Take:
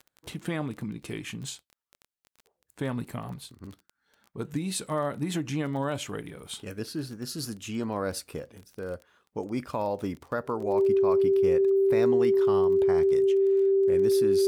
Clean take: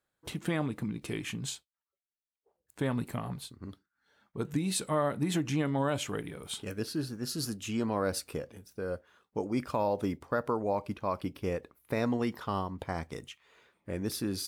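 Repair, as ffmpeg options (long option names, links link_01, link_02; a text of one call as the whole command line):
ffmpeg -i in.wav -af "adeclick=threshold=4,bandreject=frequency=390:width=30" out.wav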